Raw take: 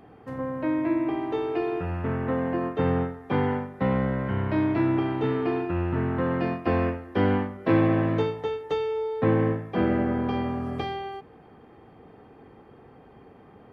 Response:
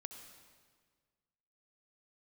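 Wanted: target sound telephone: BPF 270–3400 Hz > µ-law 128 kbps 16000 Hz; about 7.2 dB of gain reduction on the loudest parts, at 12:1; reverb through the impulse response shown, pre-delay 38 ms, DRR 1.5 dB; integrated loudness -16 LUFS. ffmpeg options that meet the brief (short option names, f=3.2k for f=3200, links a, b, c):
-filter_complex "[0:a]acompressor=threshold=-24dB:ratio=12,asplit=2[a][b];[1:a]atrim=start_sample=2205,adelay=38[c];[b][c]afir=irnorm=-1:irlink=0,volume=3dB[d];[a][d]amix=inputs=2:normalize=0,highpass=270,lowpass=3.4k,volume=14dB" -ar 16000 -c:a pcm_mulaw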